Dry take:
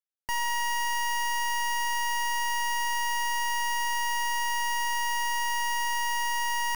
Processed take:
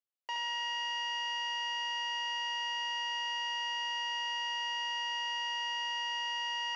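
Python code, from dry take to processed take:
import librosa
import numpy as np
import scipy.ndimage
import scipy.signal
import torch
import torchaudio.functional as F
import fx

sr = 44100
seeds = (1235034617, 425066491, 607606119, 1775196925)

p1 = fx.cabinet(x, sr, low_hz=410.0, low_slope=24, high_hz=4900.0, hz=(540.0, 1700.0, 2900.0), db=(7, -5, 5))
p2 = p1 + fx.echo_single(p1, sr, ms=71, db=-4.5, dry=0)
y = F.gain(torch.from_numpy(p2), -6.5).numpy()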